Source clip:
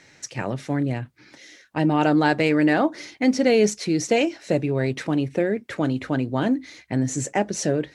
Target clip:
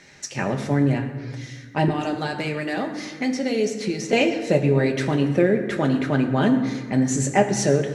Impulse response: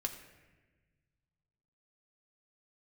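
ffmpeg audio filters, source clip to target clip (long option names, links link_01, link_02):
-filter_complex "[0:a]asettb=1/sr,asplit=3[link_01][link_02][link_03];[link_01]atrim=end=1.884[link_04];[link_02]atrim=start=1.88:end=4.13,asetpts=PTS-STARTPTS,afade=type=in:duration=0.004:curve=qsin,afade=type=out:start_time=2.246:duration=0.004:curve=qsin,acrossover=split=450|3600[link_05][link_06][link_07];[link_05]acompressor=threshold=-29dB:ratio=4[link_08];[link_06]acompressor=threshold=-33dB:ratio=4[link_09];[link_07]acompressor=threshold=-40dB:ratio=4[link_10];[link_08][link_09][link_10]amix=inputs=3:normalize=0[link_11];[link_03]atrim=start=4.126[link_12];[link_04][link_11]acrossfade=duration=0.004:curve1=hsin:curve2=qsin[link_13];[link_13][link_12]acrossfade=duration=0.004:curve1=qsin:curve2=hsin[link_14];[1:a]atrim=start_sample=2205,asetrate=32634,aresample=44100[link_15];[link_14][link_15]afir=irnorm=-1:irlink=0,volume=1.5dB"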